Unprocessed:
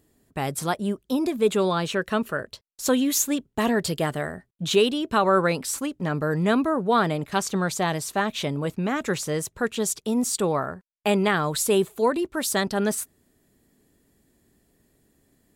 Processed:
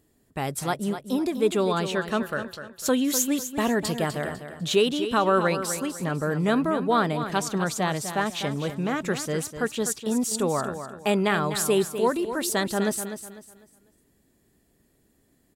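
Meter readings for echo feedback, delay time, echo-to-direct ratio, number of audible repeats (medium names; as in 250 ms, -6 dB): 32%, 250 ms, -9.5 dB, 3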